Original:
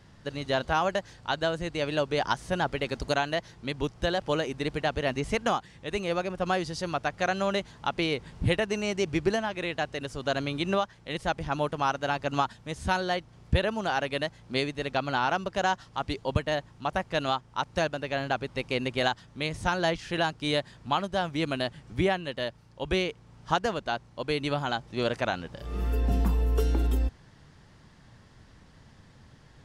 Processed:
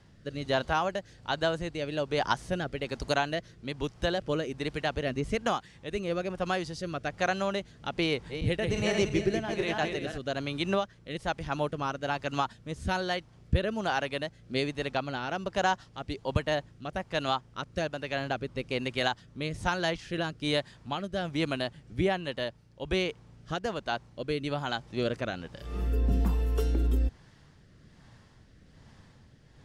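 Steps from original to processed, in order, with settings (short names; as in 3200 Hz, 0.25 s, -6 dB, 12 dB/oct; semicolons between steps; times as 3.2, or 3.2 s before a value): 8.07–10.18 regenerating reverse delay 0.171 s, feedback 62%, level -5 dB; rotary speaker horn 1.2 Hz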